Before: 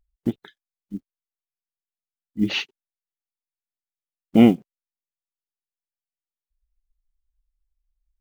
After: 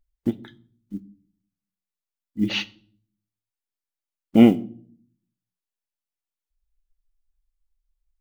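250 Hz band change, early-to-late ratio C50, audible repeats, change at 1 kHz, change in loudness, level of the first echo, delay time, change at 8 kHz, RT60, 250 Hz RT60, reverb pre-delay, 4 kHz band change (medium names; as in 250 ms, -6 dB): 0.0 dB, 21.5 dB, no echo, -1.5 dB, 0.0 dB, no echo, no echo, no reading, 0.50 s, 0.75 s, 3 ms, -0.5 dB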